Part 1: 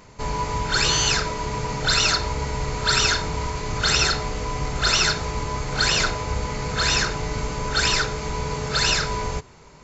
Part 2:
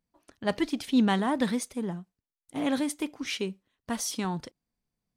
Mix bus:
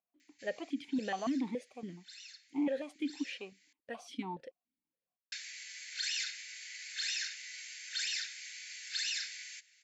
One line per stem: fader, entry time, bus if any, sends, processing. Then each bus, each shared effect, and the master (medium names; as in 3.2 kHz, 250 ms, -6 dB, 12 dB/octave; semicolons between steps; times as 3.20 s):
-9.0 dB, 0.20 s, muted 3.73–5.32 s, no send, steep high-pass 1.7 kHz 72 dB/octave; auto duck -22 dB, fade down 0.95 s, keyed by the second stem
+3.0 dB, 0.00 s, no send, stepped vowel filter 7.1 Hz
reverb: none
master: peak limiter -26.5 dBFS, peak gain reduction 7.5 dB